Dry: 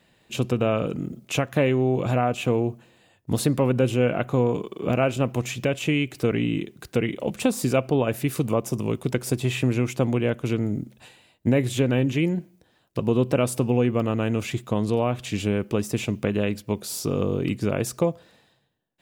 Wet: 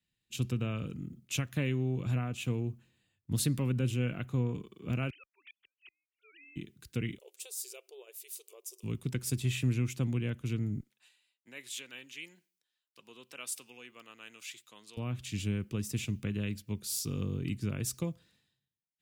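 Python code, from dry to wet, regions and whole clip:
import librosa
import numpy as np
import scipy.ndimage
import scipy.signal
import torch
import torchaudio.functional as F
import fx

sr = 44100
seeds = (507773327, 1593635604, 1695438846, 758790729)

y = fx.chain(x, sr, fx.sine_speech(),
    fx.highpass(hz=1400.0, slope=12),
    fx.gate_flip(shuts_db=-29.0, range_db=-39), at=(5.1, 6.56))
y = fx.chain(y, sr, fx.brickwall_highpass(low_hz=360.0),
    fx.peak_eq(hz=1500.0, db=-14.5, octaves=2.4), at=(7.18, 8.83))
y = fx.chain(y, sr, fx.highpass(hz=750.0, slope=12),
    fx.high_shelf(hz=10000.0, db=-3.5), at=(10.8, 14.97))
y = fx.tone_stack(y, sr, knobs='6-0-2')
y = fx.band_widen(y, sr, depth_pct=40)
y = F.gain(torch.from_numpy(y), 8.5).numpy()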